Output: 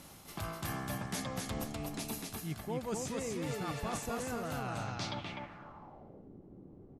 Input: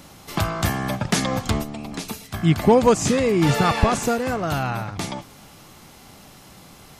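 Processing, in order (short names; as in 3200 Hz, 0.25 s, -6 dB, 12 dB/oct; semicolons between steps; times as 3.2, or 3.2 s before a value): reverse; compressor 6:1, threshold -28 dBFS, peak gain reduction 17 dB; reverse; feedback echo 0.251 s, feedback 24%, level -3 dB; low-pass sweep 12000 Hz -> 360 Hz, 4.6–6.3; gain -9 dB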